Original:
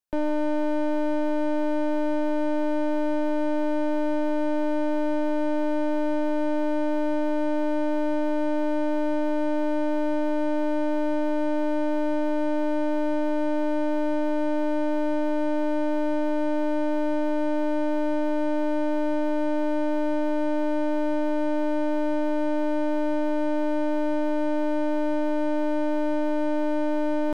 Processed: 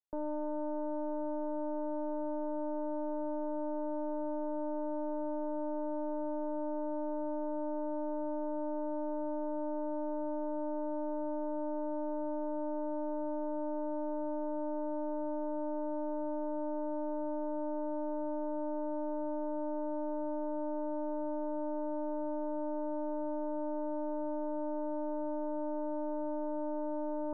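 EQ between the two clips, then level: steep low-pass 1.2 kHz 36 dB/octave; distance through air 200 m; bass shelf 440 Hz -8 dB; -6.5 dB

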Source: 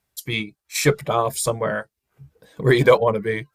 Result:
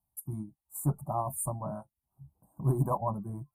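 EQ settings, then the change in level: elliptic band-stop 910–9400 Hz, stop band 40 dB; band-stop 530 Hz, Q 12; static phaser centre 1.1 kHz, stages 4; -5.0 dB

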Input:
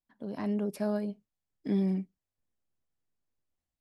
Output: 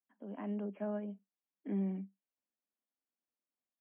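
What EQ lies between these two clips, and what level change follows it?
rippled Chebyshev high-pass 190 Hz, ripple 3 dB; brick-wall FIR low-pass 3.3 kHz; distance through air 71 m; -5.5 dB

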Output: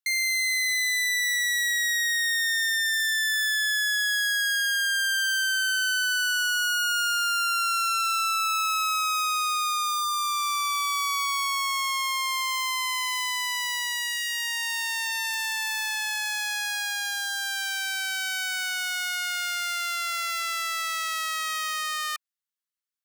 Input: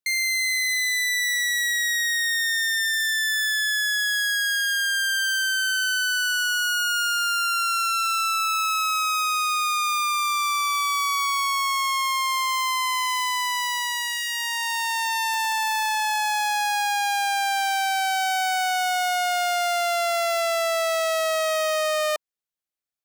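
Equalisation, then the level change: steep high-pass 1.1 kHz 36 dB/octave; band-stop 2.4 kHz, Q 15; -1.5 dB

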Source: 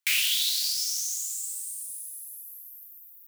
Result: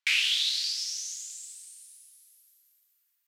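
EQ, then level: high-pass 820 Hz 12 dB/octave; low-pass 4.6 kHz 12 dB/octave; +2.0 dB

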